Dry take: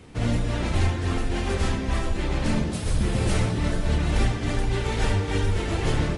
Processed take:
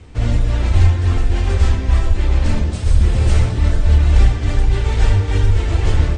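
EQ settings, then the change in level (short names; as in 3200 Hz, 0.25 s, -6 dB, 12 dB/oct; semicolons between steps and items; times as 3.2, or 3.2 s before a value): steep low-pass 9200 Hz 96 dB/oct; resonant low shelf 110 Hz +9 dB, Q 1.5; +2.0 dB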